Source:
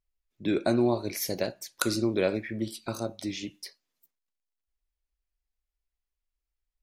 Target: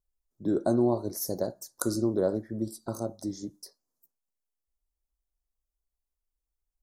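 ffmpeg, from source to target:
-af "asuperstop=centerf=2600:order=4:qfactor=0.53"

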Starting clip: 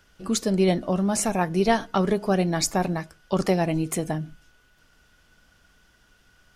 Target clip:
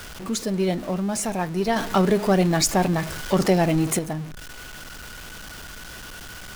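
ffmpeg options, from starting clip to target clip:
-filter_complex "[0:a]aeval=exprs='val(0)+0.5*0.0335*sgn(val(0))':c=same,asettb=1/sr,asplit=3[a][b][c];[a]atrim=end=1.764[d];[b]atrim=start=1.76:end=3.99,asetpts=PTS-STARTPTS,afade=t=in:d=0.004:c=qsin,afade=t=out:st=2.226:d=0.004:c=qsin,acontrast=55[e];[c]atrim=start=3.986[f];[d][e]acrossfade=d=0.004:c1=hsin:c2=qsin[g];[g][f]acrossfade=d=0.004:c1=qsin:c2=hsin,volume=-3.5dB"

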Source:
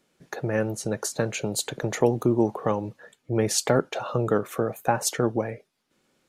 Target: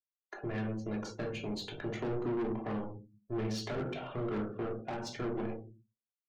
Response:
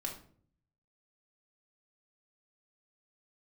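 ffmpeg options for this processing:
-filter_complex "[0:a]asplit=2[a][b];[b]acrusher=bits=5:mix=0:aa=0.000001,volume=-6dB[c];[a][c]amix=inputs=2:normalize=0,aeval=exprs='sgn(val(0))*max(abs(val(0))-0.0299,0)':c=same,adynamicequalizer=threshold=0.00708:dfrequency=3100:dqfactor=1.2:tfrequency=3100:tqfactor=1.2:attack=5:release=100:ratio=0.375:range=2:mode=boostabove:tftype=bell[d];[1:a]atrim=start_sample=2205,asetrate=52920,aresample=44100[e];[d][e]afir=irnorm=-1:irlink=0,afftdn=nr=28:nf=-43,lowpass=f=5k:w=0.5412,lowpass=f=5k:w=1.3066,asoftclip=type=tanh:threshold=-22.5dB,acrossover=split=390[f][g];[g]acompressor=threshold=-32dB:ratio=4[h];[f][h]amix=inputs=2:normalize=0,volume=-7dB"

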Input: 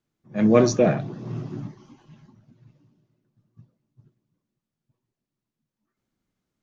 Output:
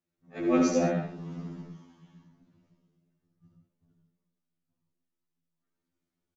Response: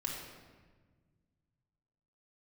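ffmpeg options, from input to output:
-filter_complex "[0:a]asplit=2[a][b];[1:a]atrim=start_sample=2205,atrim=end_sample=6615,adelay=73[c];[b][c]afir=irnorm=-1:irlink=0,volume=-2.5dB[d];[a][d]amix=inputs=2:normalize=0,asetrate=45938,aresample=44100,afftfilt=real='re*2*eq(mod(b,4),0)':imag='im*2*eq(mod(b,4),0)':win_size=2048:overlap=0.75,volume=-6dB"

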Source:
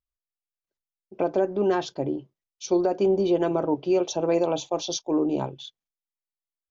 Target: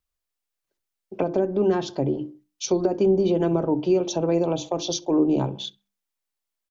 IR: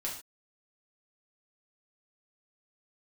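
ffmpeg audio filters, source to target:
-filter_complex "[0:a]bandreject=f=50:t=h:w=6,bandreject=f=100:t=h:w=6,bandreject=f=150:t=h:w=6,bandreject=f=200:t=h:w=6,bandreject=f=250:t=h:w=6,bandreject=f=300:t=h:w=6,bandreject=f=350:t=h:w=6,asplit=2[a][b];[b]adelay=65,lowpass=f=1.5k:p=1,volume=-20dB,asplit=2[c][d];[d]adelay=65,lowpass=f=1.5k:p=1,volume=0.46,asplit=2[e][f];[f]adelay=65,lowpass=f=1.5k:p=1,volume=0.46[g];[c][e][g]amix=inputs=3:normalize=0[h];[a][h]amix=inputs=2:normalize=0,acrossover=split=300[i][j];[j]acompressor=threshold=-33dB:ratio=6[k];[i][k]amix=inputs=2:normalize=0,volume=8dB"

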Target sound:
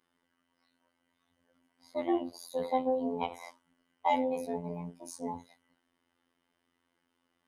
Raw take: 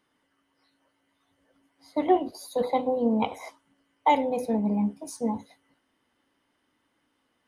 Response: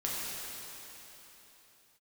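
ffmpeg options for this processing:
-af "afftfilt=real='hypot(re,im)*cos(PI*b)':imag='0':win_size=2048:overlap=0.75,acontrast=74,volume=-9dB"

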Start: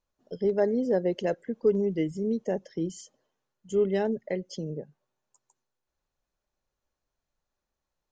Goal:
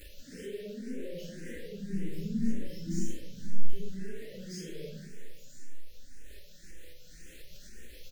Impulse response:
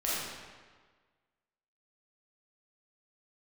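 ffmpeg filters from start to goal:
-filter_complex "[0:a]aeval=exprs='val(0)+0.5*0.0398*sgn(val(0))':c=same,asplit=2[a][b];[b]adelay=556,lowpass=f=2k:p=1,volume=-14.5dB,asplit=2[c][d];[d]adelay=556,lowpass=f=2k:p=1,volume=0.37,asplit=2[e][f];[f]adelay=556,lowpass=f=2k:p=1,volume=0.37[g];[a][c][e][g]amix=inputs=4:normalize=0,alimiter=level_in=0.5dB:limit=-24dB:level=0:latency=1:release=10,volume=-0.5dB,agate=range=-33dB:threshold=-25dB:ratio=3:detection=peak,equalizer=f=310:t=o:w=0.77:g=-2,flanger=delay=3.4:depth=2.8:regen=44:speed=0.36:shape=sinusoidal,asettb=1/sr,asplit=3[h][i][j];[h]atrim=end=1.284[k];[i]atrim=start=1.28:end=3.73,asetpts=PTS-STARTPTS,afade=t=in:d=0.004:c=qsin,afade=t=out:st=2.446:d=0.004:c=qsin,asubboost=boost=11.5:cutoff=230[l];[j]atrim=start=3.726[m];[k][l]acrossfade=d=0.004:c1=hsin:c2=qsin[n];[n][m]acrossfade=d=0.004:c1=qsin:c2=hsin,asuperstop=centerf=940:order=8:qfactor=0.86[o];[1:a]atrim=start_sample=2205,asetrate=61740,aresample=44100[p];[o][p]afir=irnorm=-1:irlink=0,acompressor=mode=upward:threshold=-31dB:ratio=2.5,asplit=2[q][r];[r]afreqshift=1.9[s];[q][s]amix=inputs=2:normalize=1,volume=-2.5dB"

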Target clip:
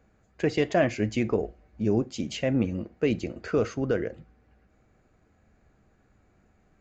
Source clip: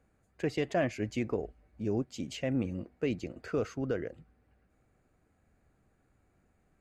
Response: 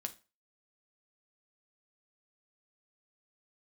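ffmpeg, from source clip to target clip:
-filter_complex "[0:a]aresample=16000,aresample=44100,asplit=2[a][b];[1:a]atrim=start_sample=2205[c];[b][c]afir=irnorm=-1:irlink=0,volume=-0.5dB[d];[a][d]amix=inputs=2:normalize=0,volume=2dB"

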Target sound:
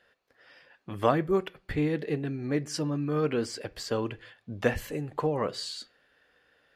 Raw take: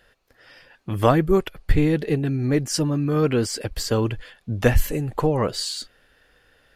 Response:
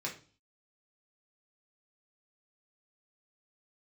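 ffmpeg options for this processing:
-filter_complex "[0:a]highpass=f=220:p=1,highshelf=f=8.1k:g=-11.5,asplit=2[a][b];[1:a]atrim=start_sample=2205,lowpass=5.9k[c];[b][c]afir=irnorm=-1:irlink=0,volume=-15.5dB[d];[a][d]amix=inputs=2:normalize=0,volume=-6.5dB"

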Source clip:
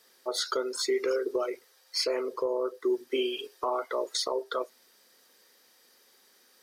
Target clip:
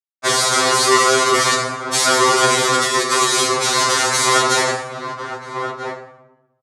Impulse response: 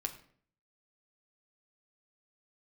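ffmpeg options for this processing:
-filter_complex "[0:a]asettb=1/sr,asplit=3[a][b][c];[a]atrim=end=1.984[d];[b]atrim=start=1.98:end=4.28,asetpts=PTS-STARTPTS,afade=t=in:d=0.004:c=qsin,afade=t=out:st=2.296:d=0.004:c=qsin,acontrast=71[e];[c]atrim=start=4.276[f];[d][e]acrossfade=d=0.004:c1=hsin:c2=qsin[g];[g][f]acrossfade=d=0.004:c1=qsin:c2=hsin,aeval=exprs='sgn(val(0))*max(abs(val(0))-0.00501,0)':c=same,asplit=2[h][i];[i]highpass=f=720:p=1,volume=29dB,asoftclip=type=tanh:threshold=-8.5dB[j];[h][j]amix=inputs=2:normalize=0,lowpass=f=4.8k:p=1,volume=-6dB,aeval=exprs='(mod(15.8*val(0)+1,2)-1)/15.8':c=same,highpass=110,equalizer=f=170:t=q:w=4:g=-8,equalizer=f=1.1k:t=q:w=4:g=6,equalizer=f=2.7k:t=q:w=4:g=-9,lowpass=f=9k:w=0.5412,lowpass=f=9k:w=1.3066,asplit=2[k][l];[l]adelay=1283,volume=-13dB,highshelf=f=4k:g=-28.9[m];[k][m]amix=inputs=2:normalize=0[n];[1:a]atrim=start_sample=2205,asetrate=23373,aresample=44100[o];[n][o]afir=irnorm=-1:irlink=0,alimiter=level_in=23.5dB:limit=-1dB:release=50:level=0:latency=1,afftfilt=real='re*2.45*eq(mod(b,6),0)':imag='im*2.45*eq(mod(b,6),0)':win_size=2048:overlap=0.75,volume=-4dB"

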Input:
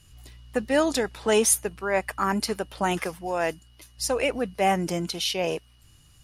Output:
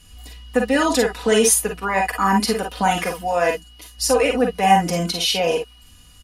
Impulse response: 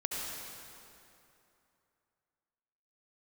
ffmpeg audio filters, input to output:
-filter_complex "[0:a]asplit=2[a][b];[b]alimiter=limit=-19.5dB:level=0:latency=1,volume=1dB[c];[a][c]amix=inputs=2:normalize=0,aecho=1:1:4.1:0.83[d];[1:a]atrim=start_sample=2205,afade=t=out:st=0.15:d=0.01,atrim=end_sample=7056,asetrate=74970,aresample=44100[e];[d][e]afir=irnorm=-1:irlink=0,volume=4dB"

